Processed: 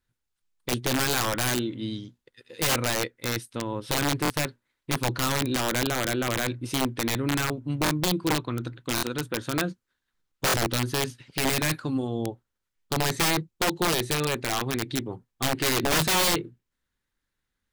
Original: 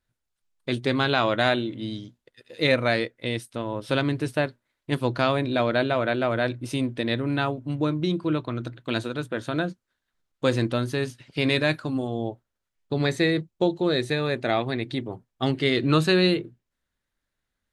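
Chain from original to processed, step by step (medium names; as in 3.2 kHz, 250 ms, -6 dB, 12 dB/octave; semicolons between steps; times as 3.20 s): peaking EQ 640 Hz -10 dB 0.25 oct; integer overflow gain 18 dB; buffer glitch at 4.23/7.84/8.96/10.47 s, samples 1024, times 2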